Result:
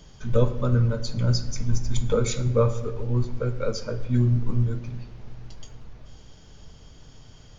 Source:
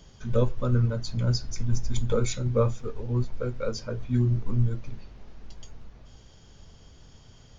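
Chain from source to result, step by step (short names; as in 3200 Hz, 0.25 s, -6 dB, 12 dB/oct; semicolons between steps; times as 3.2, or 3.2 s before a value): shoebox room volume 780 m³, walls mixed, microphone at 0.47 m; gain +2.5 dB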